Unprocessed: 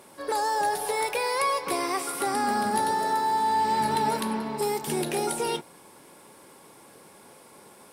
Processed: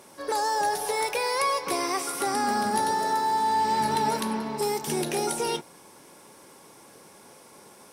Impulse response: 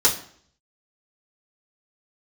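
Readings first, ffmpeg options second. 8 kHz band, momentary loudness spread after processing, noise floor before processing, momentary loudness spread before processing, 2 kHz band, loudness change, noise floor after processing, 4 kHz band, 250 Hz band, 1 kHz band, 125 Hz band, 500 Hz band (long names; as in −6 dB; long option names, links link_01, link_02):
+1.5 dB, 5 LU, −52 dBFS, 5 LU, 0.0 dB, 0.0 dB, −52 dBFS, +2.0 dB, 0.0 dB, 0.0 dB, 0.0 dB, 0.0 dB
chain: -af "equalizer=frequency=5900:width=3.7:gain=7.5"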